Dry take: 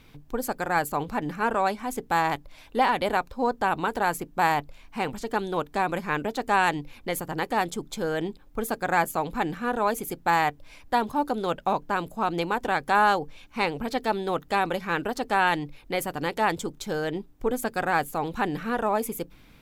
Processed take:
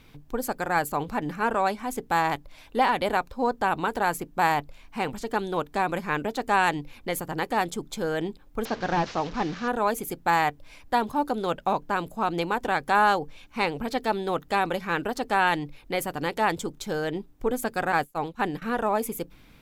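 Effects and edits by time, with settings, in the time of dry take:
8.65–9.68 delta modulation 32 kbps, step -34.5 dBFS
17.92–18.62 expander -27 dBFS

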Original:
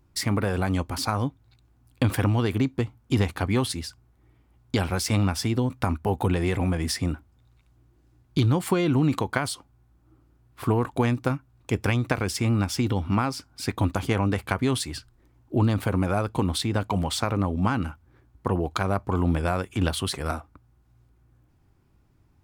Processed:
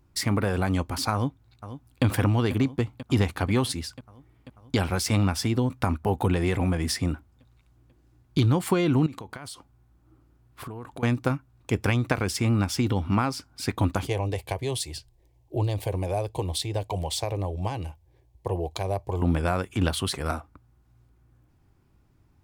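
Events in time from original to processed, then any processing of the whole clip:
1.13–2.04 echo throw 0.49 s, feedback 75%, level -12.5 dB
9.06–11.03 compressor 8:1, threshold -35 dBFS
14.07–19.22 fixed phaser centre 560 Hz, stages 4

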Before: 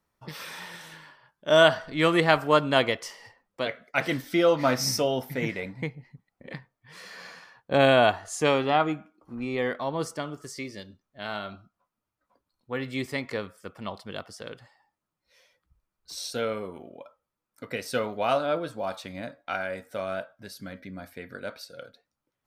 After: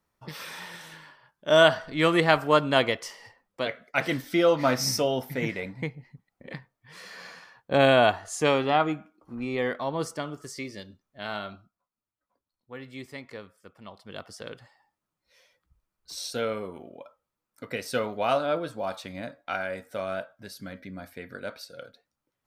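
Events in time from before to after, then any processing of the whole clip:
11.43–14.34 dip -9.5 dB, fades 0.38 s

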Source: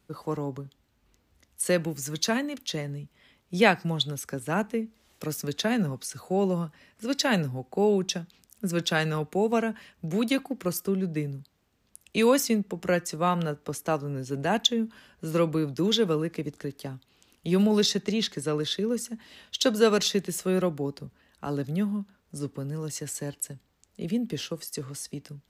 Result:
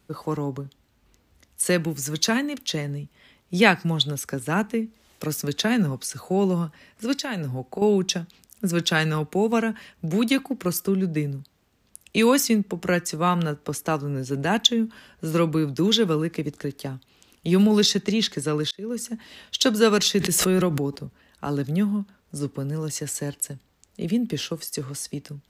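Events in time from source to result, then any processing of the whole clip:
7.13–7.82 compressor, threshold -30 dBFS
18.71–19.12 fade in
20.2–21 backwards sustainer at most 24 dB/s
whole clip: dynamic EQ 600 Hz, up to -6 dB, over -38 dBFS, Q 1.8; gain +5 dB

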